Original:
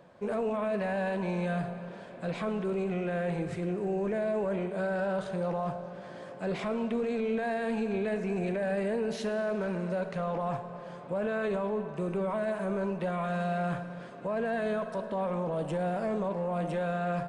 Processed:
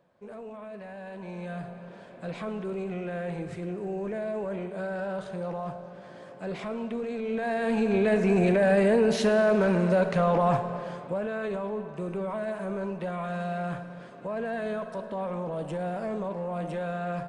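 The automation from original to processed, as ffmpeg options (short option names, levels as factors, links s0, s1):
-af "volume=2.82,afade=t=in:st=1.02:d=1:silence=0.354813,afade=t=in:st=7.22:d=1.06:silence=0.281838,afade=t=out:st=10.71:d=0.54:silence=0.316228"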